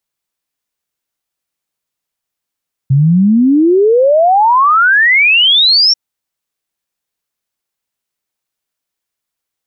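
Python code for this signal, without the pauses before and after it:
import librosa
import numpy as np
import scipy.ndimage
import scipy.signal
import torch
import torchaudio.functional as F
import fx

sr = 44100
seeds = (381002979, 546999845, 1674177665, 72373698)

y = fx.ess(sr, length_s=3.04, from_hz=130.0, to_hz=5600.0, level_db=-5.5)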